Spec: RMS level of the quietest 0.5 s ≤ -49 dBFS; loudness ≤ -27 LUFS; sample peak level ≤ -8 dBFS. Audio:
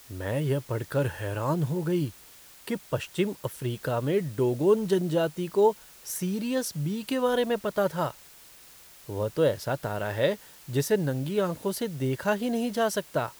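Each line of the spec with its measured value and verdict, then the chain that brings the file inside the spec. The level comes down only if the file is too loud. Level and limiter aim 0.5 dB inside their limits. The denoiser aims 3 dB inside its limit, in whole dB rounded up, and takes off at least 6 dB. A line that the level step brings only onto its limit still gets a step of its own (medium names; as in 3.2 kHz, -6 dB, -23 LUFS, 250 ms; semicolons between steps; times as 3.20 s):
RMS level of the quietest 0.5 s -51 dBFS: pass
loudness -28.0 LUFS: pass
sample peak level -10.5 dBFS: pass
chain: none needed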